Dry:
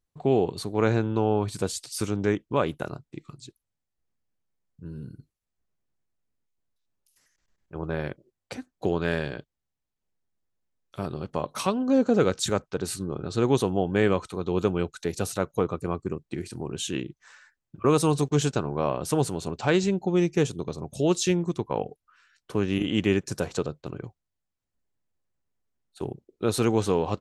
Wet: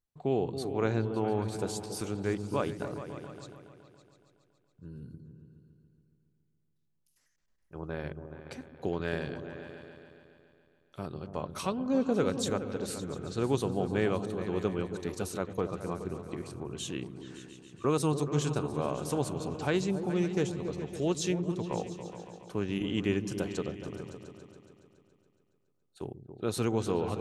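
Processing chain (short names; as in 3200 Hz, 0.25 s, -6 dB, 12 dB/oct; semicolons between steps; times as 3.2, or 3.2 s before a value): repeats that get brighter 0.14 s, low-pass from 200 Hz, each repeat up 2 oct, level -6 dB; gain -7 dB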